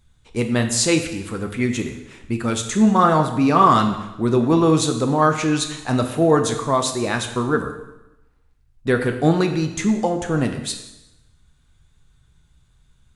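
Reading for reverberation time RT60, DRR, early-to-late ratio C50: 0.95 s, 5.0 dB, 8.5 dB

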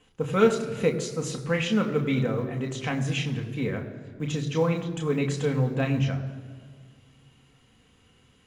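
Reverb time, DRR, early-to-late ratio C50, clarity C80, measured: 1.8 s, 2.5 dB, 10.5 dB, 11.5 dB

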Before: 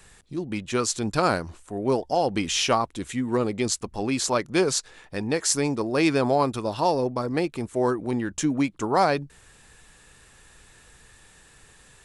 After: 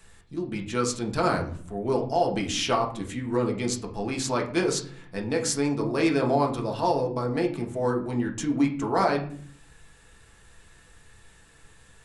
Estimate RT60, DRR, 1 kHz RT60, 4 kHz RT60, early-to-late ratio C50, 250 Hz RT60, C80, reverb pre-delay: 0.50 s, 0.0 dB, 0.45 s, 0.35 s, 10.0 dB, 0.90 s, 14.5 dB, 5 ms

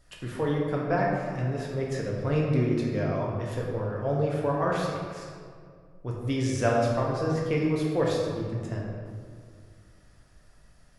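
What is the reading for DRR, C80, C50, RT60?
−3.0 dB, 2.5 dB, 0.0 dB, 2.1 s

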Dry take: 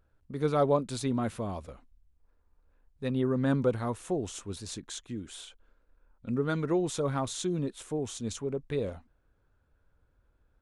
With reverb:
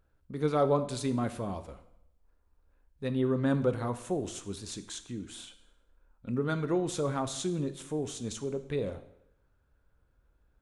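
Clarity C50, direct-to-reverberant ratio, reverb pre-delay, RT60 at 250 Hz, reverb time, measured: 13.0 dB, 9.5 dB, 4 ms, 0.75 s, 0.75 s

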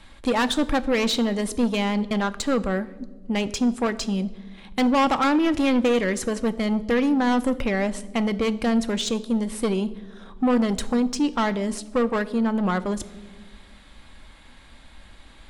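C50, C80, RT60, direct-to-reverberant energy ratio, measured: 18.0 dB, 20.0 dB, 1.4 s, 11.0 dB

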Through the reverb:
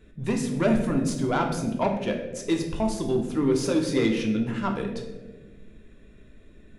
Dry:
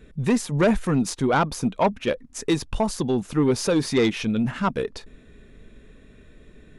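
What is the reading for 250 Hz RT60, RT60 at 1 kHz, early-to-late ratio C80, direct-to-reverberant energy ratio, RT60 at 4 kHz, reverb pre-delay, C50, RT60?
2.0 s, 1.1 s, 8.5 dB, 2.0 dB, 0.70 s, 3 ms, 6.5 dB, 1.4 s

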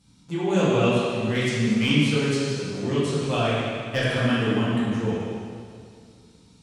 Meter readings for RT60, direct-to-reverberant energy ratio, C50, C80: 2.2 s, −10.0 dB, −3.5 dB, −1.5 dB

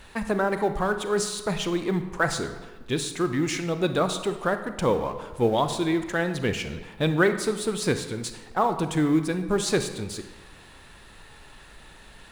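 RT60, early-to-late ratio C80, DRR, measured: 1.3 s, 11.5 dB, 8.5 dB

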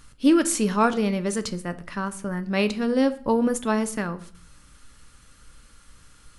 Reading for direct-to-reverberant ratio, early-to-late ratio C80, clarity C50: 10.0 dB, 21.0 dB, 17.0 dB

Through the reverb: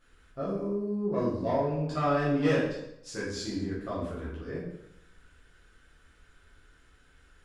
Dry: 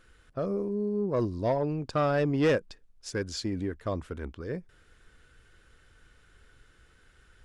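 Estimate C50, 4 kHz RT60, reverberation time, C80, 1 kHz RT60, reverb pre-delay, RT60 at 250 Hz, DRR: 2.0 dB, 0.65 s, 0.80 s, 5.5 dB, 0.80 s, 8 ms, 0.85 s, −9.5 dB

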